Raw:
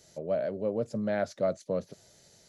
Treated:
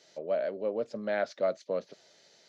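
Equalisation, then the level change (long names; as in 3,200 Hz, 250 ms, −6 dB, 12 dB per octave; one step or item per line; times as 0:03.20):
high-pass filter 310 Hz 12 dB per octave
high-frequency loss of the air 230 metres
high-shelf EQ 2,200 Hz +12 dB
0.0 dB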